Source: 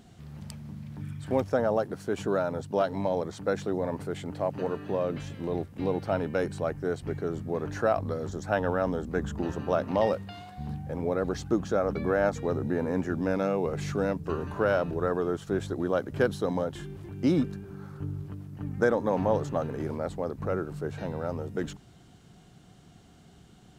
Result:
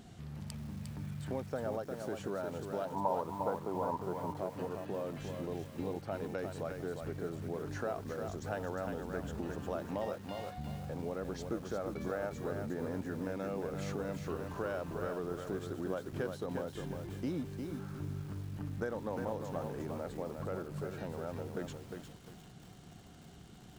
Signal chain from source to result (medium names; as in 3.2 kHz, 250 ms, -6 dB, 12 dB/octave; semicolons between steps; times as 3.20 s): compression 2.5:1, threshold -41 dBFS, peak gain reduction 15 dB; 2.85–4.37 s: resonant low-pass 980 Hz, resonance Q 7; bit-crushed delay 354 ms, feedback 35%, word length 9-bit, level -5 dB